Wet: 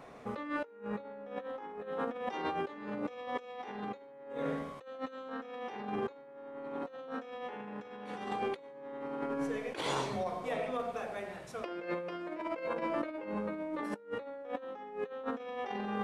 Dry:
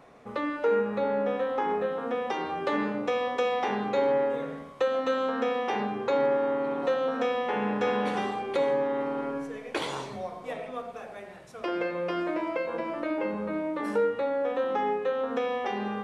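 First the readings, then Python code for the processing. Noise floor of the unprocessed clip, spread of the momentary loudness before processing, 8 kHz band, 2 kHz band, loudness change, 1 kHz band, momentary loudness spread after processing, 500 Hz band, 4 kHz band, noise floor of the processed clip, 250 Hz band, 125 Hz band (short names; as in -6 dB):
-44 dBFS, 10 LU, n/a, -8.5 dB, -10.0 dB, -9.0 dB, 8 LU, -11.5 dB, -7.5 dB, -52 dBFS, -7.5 dB, -5.5 dB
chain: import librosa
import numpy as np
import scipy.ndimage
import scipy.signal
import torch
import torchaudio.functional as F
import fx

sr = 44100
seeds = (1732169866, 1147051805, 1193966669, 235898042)

y = fx.over_compress(x, sr, threshold_db=-34.0, ratio=-0.5)
y = y * 10.0 ** (-4.0 / 20.0)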